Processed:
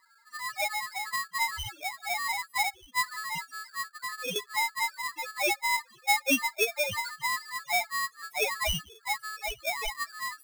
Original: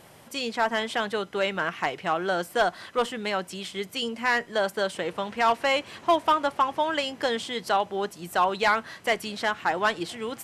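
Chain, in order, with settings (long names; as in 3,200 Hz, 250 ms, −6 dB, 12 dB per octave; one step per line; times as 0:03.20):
spectral peaks only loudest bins 1
0:03.84–0:04.36: low-pass filter 1,200 Hz 12 dB per octave
ring modulator with a square carrier 1,500 Hz
level +4 dB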